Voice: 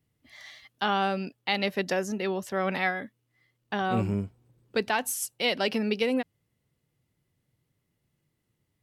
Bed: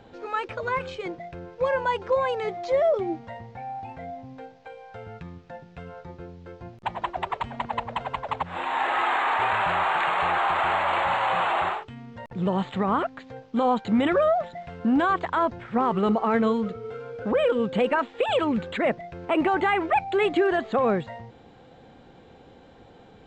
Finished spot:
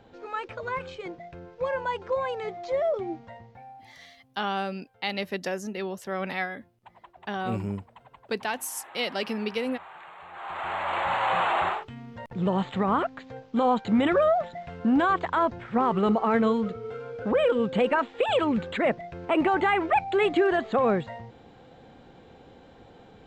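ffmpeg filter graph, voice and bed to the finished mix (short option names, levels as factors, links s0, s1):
-filter_complex "[0:a]adelay=3550,volume=0.708[s0];[1:a]volume=7.08,afade=t=out:st=3.17:d=0.83:silence=0.133352,afade=t=in:st=10.31:d=1.02:silence=0.0841395[s1];[s0][s1]amix=inputs=2:normalize=0"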